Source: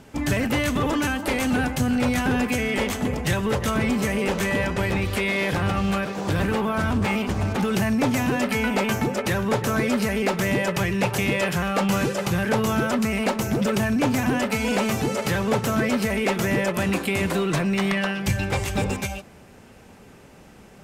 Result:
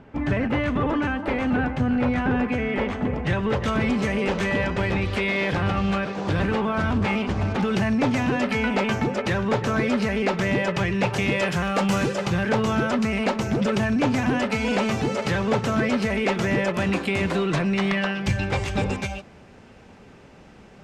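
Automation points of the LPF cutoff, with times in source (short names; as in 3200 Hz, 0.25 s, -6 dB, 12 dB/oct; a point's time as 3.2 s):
3.13 s 2100 Hz
3.76 s 4700 Hz
10.93 s 4700 Hz
11.9 s 8900 Hz
12.32 s 5300 Hz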